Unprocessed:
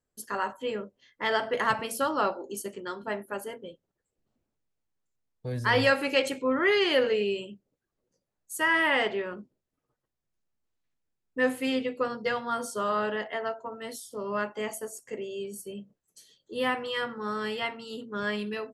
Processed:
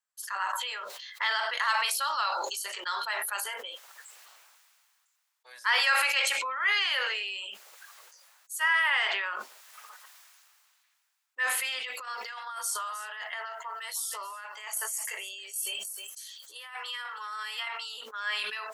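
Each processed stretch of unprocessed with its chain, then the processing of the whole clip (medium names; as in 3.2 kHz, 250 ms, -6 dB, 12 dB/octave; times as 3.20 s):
0.53–3.46 s: peaking EQ 4.1 kHz +9 dB 0.45 oct + three bands compressed up and down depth 70%
11.79–17.67 s: treble shelf 8.4 kHz +10.5 dB + compressor with a negative ratio -33 dBFS, ratio -0.5 + delay 312 ms -19.5 dB
whole clip: high-pass 990 Hz 24 dB/octave; decay stretcher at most 24 dB/s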